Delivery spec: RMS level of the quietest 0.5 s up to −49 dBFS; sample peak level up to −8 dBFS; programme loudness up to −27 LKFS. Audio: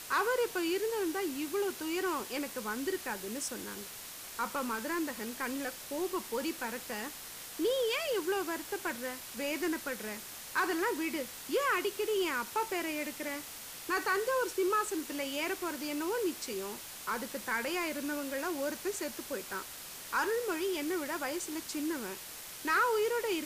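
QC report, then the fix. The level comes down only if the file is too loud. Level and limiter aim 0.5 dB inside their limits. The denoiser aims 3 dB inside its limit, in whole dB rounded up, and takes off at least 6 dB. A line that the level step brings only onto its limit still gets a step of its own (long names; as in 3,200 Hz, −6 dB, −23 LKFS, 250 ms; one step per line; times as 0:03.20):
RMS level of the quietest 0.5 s −46 dBFS: out of spec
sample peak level −19.0 dBFS: in spec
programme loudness −34.5 LKFS: in spec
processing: broadband denoise 6 dB, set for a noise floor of −46 dBFS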